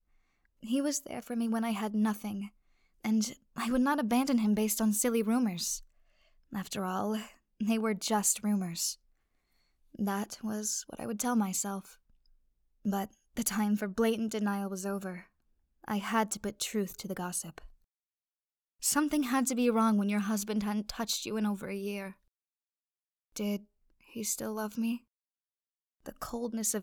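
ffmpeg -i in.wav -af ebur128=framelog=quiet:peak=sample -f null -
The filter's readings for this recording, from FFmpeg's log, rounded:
Integrated loudness:
  I:         -32.2 LUFS
  Threshold: -42.7 LUFS
Loudness range:
  LRA:         7.8 LU
  Threshold: -53.3 LUFS
  LRA low:   -38.2 LUFS
  LRA high:  -30.4 LUFS
Sample peak:
  Peak:      -14.0 dBFS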